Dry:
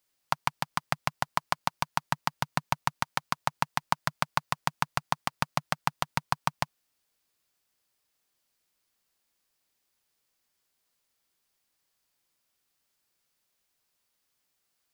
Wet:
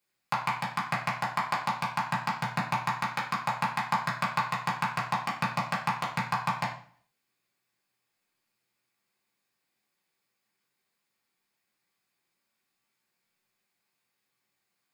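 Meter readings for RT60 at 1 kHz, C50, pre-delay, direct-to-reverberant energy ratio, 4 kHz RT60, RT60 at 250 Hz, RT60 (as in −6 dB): 0.50 s, 6.5 dB, 3 ms, −6.0 dB, 0.45 s, 0.60 s, 0.50 s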